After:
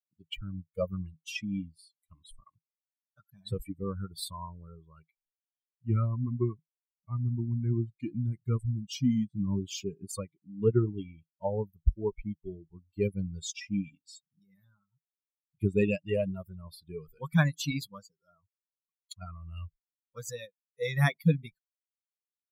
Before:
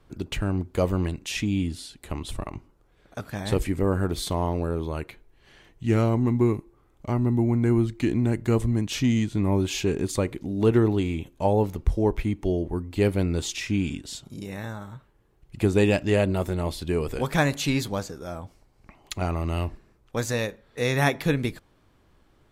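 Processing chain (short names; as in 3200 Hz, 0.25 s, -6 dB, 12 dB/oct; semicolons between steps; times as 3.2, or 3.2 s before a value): per-bin expansion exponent 3; thirty-one-band EQ 160 Hz +9 dB, 315 Hz -7 dB, 800 Hz -9 dB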